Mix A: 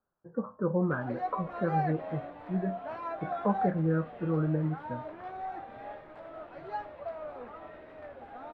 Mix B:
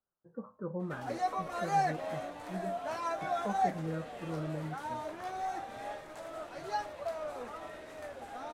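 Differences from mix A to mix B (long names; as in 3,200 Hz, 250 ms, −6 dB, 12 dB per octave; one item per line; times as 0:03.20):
speech −9.5 dB
background: remove high-frequency loss of the air 440 metres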